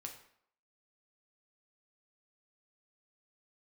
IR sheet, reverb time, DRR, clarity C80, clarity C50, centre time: 0.65 s, 2.0 dB, 11.5 dB, 8.5 dB, 19 ms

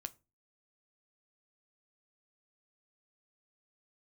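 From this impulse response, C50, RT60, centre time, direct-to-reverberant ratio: 23.0 dB, 0.30 s, 3 ms, 11.0 dB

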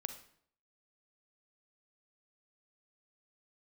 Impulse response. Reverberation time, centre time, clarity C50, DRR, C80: 0.60 s, 11 ms, 9.5 dB, 8.0 dB, 13.5 dB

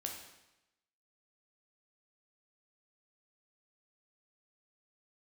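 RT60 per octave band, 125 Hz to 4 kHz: 0.95 s, 0.95 s, 0.90 s, 0.95 s, 0.95 s, 0.90 s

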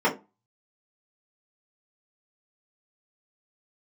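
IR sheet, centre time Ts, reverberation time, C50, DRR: 16 ms, 0.25 s, 12.5 dB, -7.0 dB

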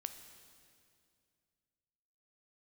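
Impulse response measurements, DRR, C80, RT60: 8.0 dB, 10.5 dB, 2.3 s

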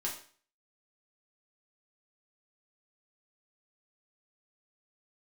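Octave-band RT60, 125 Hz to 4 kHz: 0.45 s, 0.45 s, 0.45 s, 0.45 s, 0.45 s, 0.45 s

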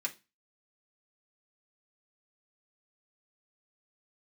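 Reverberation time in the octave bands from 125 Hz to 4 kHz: 0.35 s, 0.35 s, 0.30 s, 0.25 s, 0.25 s, 0.30 s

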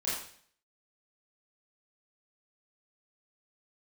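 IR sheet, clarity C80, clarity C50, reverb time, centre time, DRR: 5.5 dB, 1.5 dB, 0.55 s, 55 ms, -9.5 dB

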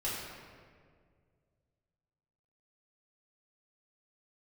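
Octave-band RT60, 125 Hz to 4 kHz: 3.0 s, 2.3 s, 2.2 s, 1.7 s, 1.6 s, 1.1 s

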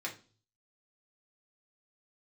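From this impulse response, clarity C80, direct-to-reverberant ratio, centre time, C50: 18.5 dB, -2.5 dB, 15 ms, 12.0 dB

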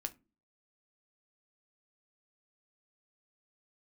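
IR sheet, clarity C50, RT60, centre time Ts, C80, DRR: 20.5 dB, no single decay rate, 4 ms, 28.5 dB, 8.0 dB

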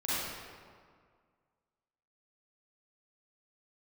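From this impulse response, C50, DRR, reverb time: -6.5 dB, -11.0 dB, 1.9 s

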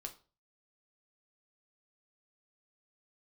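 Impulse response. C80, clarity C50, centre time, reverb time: 20.0 dB, 14.5 dB, 9 ms, 0.35 s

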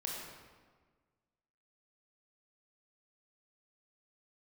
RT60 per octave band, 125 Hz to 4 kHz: 1.8 s, 1.7 s, 1.5 s, 1.4 s, 1.2 s, 1.0 s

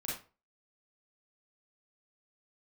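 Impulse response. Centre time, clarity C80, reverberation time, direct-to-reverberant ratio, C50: 46 ms, 9.5 dB, 0.35 s, -6.0 dB, 1.5 dB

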